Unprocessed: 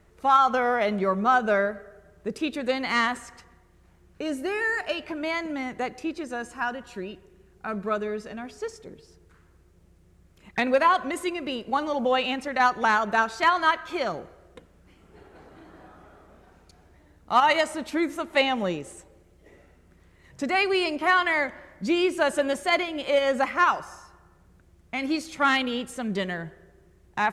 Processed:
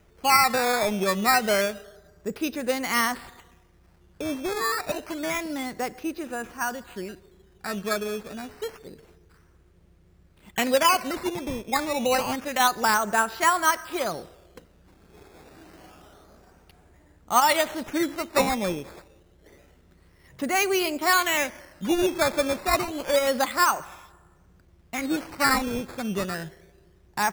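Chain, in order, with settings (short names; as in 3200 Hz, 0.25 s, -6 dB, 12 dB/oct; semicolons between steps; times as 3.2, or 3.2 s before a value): decimation with a swept rate 10×, swing 100% 0.28 Hz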